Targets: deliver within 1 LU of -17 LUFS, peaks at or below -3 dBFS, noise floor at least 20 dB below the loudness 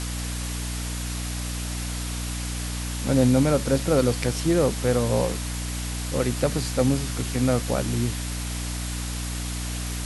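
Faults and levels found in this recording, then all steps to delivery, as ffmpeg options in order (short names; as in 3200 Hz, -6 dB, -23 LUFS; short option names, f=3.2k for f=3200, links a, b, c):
hum 60 Hz; harmonics up to 300 Hz; hum level -28 dBFS; noise floor -30 dBFS; noise floor target -46 dBFS; loudness -25.5 LUFS; peak -7.5 dBFS; loudness target -17.0 LUFS
-> -af "bandreject=f=60:t=h:w=6,bandreject=f=120:t=h:w=6,bandreject=f=180:t=h:w=6,bandreject=f=240:t=h:w=6,bandreject=f=300:t=h:w=6"
-af "afftdn=nr=16:nf=-30"
-af "volume=8.5dB,alimiter=limit=-3dB:level=0:latency=1"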